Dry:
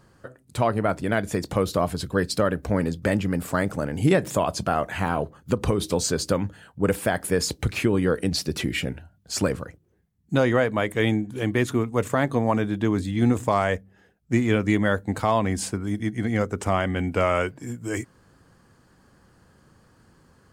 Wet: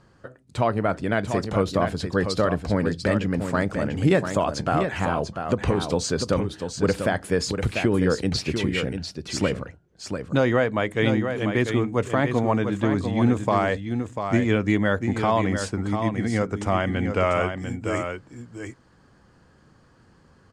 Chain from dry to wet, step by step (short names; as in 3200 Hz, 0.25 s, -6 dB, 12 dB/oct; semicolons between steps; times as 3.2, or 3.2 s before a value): LPF 6500 Hz 12 dB/oct; on a send: echo 0.694 s -7 dB